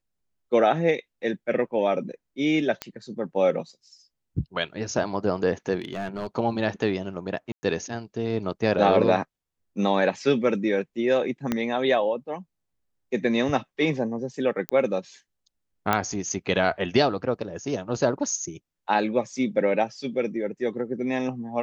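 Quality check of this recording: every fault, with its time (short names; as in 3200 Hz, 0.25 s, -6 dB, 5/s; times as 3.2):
2.82 pop -13 dBFS
5.8–6.27 clipped -25.5 dBFS
7.52–7.63 gap 0.11 s
11.52 pop -11 dBFS
14.69 pop -12 dBFS
15.93 pop -8 dBFS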